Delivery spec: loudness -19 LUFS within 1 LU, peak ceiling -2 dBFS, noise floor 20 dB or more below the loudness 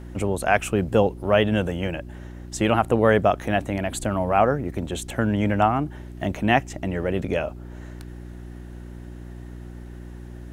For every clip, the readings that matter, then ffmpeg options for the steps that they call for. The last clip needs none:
hum 60 Hz; harmonics up to 360 Hz; hum level -36 dBFS; loudness -23.0 LUFS; peak -3.0 dBFS; loudness target -19.0 LUFS
-> -af "bandreject=f=60:t=h:w=4,bandreject=f=120:t=h:w=4,bandreject=f=180:t=h:w=4,bandreject=f=240:t=h:w=4,bandreject=f=300:t=h:w=4,bandreject=f=360:t=h:w=4"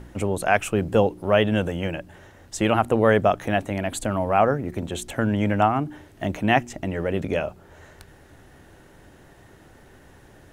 hum none; loudness -23.0 LUFS; peak -3.0 dBFS; loudness target -19.0 LUFS
-> -af "volume=4dB,alimiter=limit=-2dB:level=0:latency=1"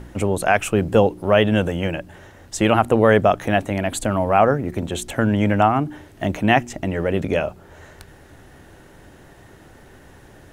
loudness -19.5 LUFS; peak -2.0 dBFS; noise floor -47 dBFS

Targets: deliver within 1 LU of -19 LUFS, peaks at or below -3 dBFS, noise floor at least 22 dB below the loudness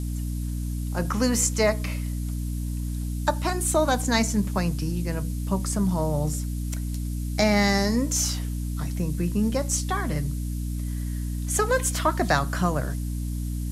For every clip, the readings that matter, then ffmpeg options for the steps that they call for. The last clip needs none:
hum 60 Hz; harmonics up to 300 Hz; hum level -26 dBFS; noise floor -29 dBFS; noise floor target -48 dBFS; loudness -26.0 LUFS; peak -7.0 dBFS; loudness target -19.0 LUFS
-> -af "bandreject=f=60:t=h:w=6,bandreject=f=120:t=h:w=6,bandreject=f=180:t=h:w=6,bandreject=f=240:t=h:w=6,bandreject=f=300:t=h:w=6"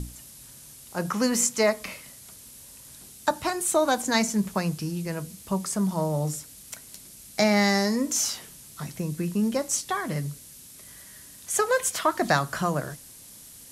hum none; noise floor -47 dBFS; noise floor target -48 dBFS
-> -af "afftdn=nr=6:nf=-47"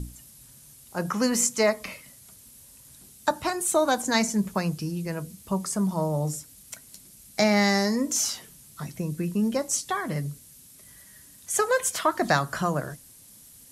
noise floor -51 dBFS; loudness -26.0 LUFS; peak -8.0 dBFS; loudness target -19.0 LUFS
-> -af "volume=7dB,alimiter=limit=-3dB:level=0:latency=1"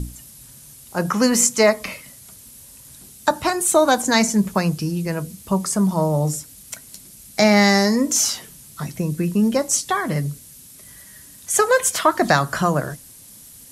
loudness -19.0 LUFS; peak -3.0 dBFS; noise floor -44 dBFS

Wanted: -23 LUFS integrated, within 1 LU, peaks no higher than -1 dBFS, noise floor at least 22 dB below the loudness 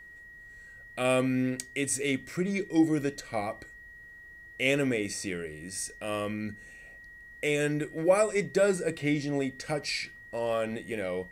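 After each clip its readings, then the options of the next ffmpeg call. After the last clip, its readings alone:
steady tone 1900 Hz; tone level -47 dBFS; loudness -30.0 LUFS; peak -11.0 dBFS; loudness target -23.0 LUFS
-> -af "bandreject=f=1.9k:w=30"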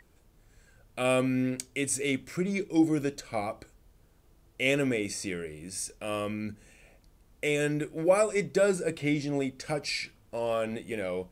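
steady tone none; loudness -30.0 LUFS; peak -11.0 dBFS; loudness target -23.0 LUFS
-> -af "volume=7dB"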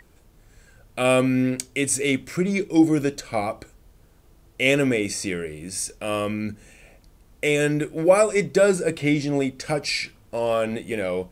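loudness -23.0 LUFS; peak -4.0 dBFS; noise floor -55 dBFS

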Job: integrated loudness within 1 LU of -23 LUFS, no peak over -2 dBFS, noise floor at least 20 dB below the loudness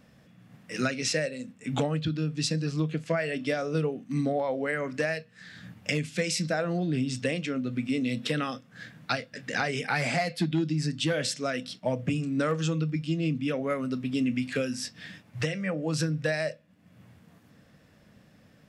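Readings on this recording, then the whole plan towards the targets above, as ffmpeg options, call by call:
loudness -29.5 LUFS; peak -14.0 dBFS; loudness target -23.0 LUFS
-> -af "volume=6.5dB"

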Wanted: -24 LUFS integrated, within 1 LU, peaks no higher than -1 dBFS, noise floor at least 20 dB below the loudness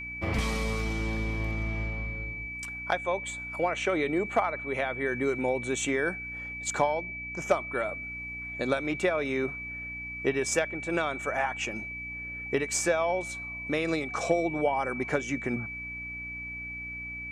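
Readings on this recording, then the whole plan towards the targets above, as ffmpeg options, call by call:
hum 60 Hz; harmonics up to 300 Hz; hum level -44 dBFS; steady tone 2300 Hz; tone level -36 dBFS; loudness -30.5 LUFS; peak -12.0 dBFS; loudness target -24.0 LUFS
-> -af "bandreject=f=60:t=h:w=4,bandreject=f=120:t=h:w=4,bandreject=f=180:t=h:w=4,bandreject=f=240:t=h:w=4,bandreject=f=300:t=h:w=4"
-af "bandreject=f=2.3k:w=30"
-af "volume=6.5dB"

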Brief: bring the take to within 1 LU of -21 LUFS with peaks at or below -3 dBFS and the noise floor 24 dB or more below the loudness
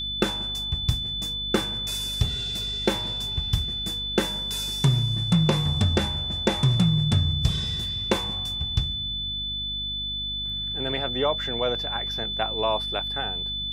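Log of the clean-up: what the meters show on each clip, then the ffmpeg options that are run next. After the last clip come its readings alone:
hum 50 Hz; harmonics up to 250 Hz; hum level -36 dBFS; steady tone 3500 Hz; tone level -28 dBFS; loudness -25.0 LUFS; peak -8.0 dBFS; loudness target -21.0 LUFS
-> -af "bandreject=f=50:t=h:w=6,bandreject=f=100:t=h:w=6,bandreject=f=150:t=h:w=6,bandreject=f=200:t=h:w=6,bandreject=f=250:t=h:w=6"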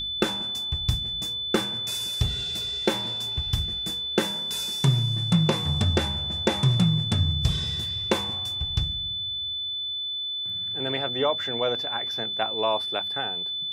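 hum none; steady tone 3500 Hz; tone level -28 dBFS
-> -af "bandreject=f=3.5k:w=30"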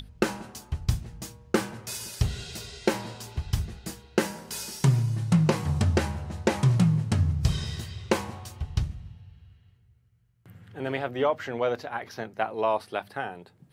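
steady tone none; loudness -28.5 LUFS; peak -8.5 dBFS; loudness target -21.0 LUFS
-> -af "volume=7.5dB,alimiter=limit=-3dB:level=0:latency=1"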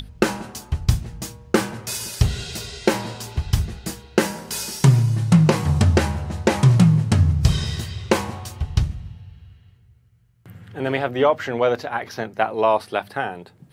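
loudness -21.0 LUFS; peak -3.0 dBFS; noise floor -54 dBFS

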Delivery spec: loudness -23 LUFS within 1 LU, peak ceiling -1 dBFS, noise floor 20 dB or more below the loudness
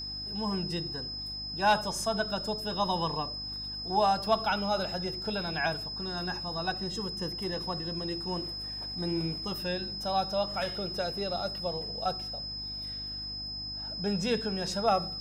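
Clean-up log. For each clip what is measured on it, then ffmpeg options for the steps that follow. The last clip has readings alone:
hum 50 Hz; harmonics up to 300 Hz; hum level -44 dBFS; steady tone 5100 Hz; tone level -36 dBFS; loudness -31.5 LUFS; peak -14.0 dBFS; loudness target -23.0 LUFS
-> -af "bandreject=f=50:t=h:w=4,bandreject=f=100:t=h:w=4,bandreject=f=150:t=h:w=4,bandreject=f=200:t=h:w=4,bandreject=f=250:t=h:w=4,bandreject=f=300:t=h:w=4"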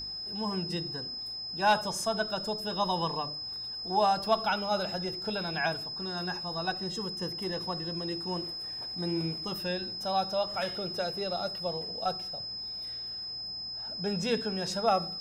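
hum none; steady tone 5100 Hz; tone level -36 dBFS
-> -af "bandreject=f=5.1k:w=30"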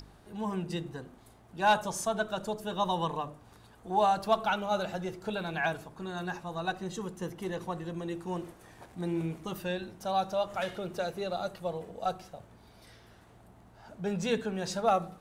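steady tone none; loudness -33.0 LUFS; peak -14.5 dBFS; loudness target -23.0 LUFS
-> -af "volume=10dB"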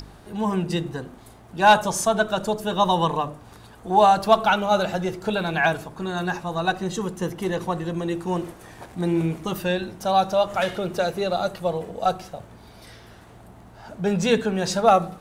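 loudness -23.0 LUFS; peak -4.5 dBFS; noise floor -47 dBFS

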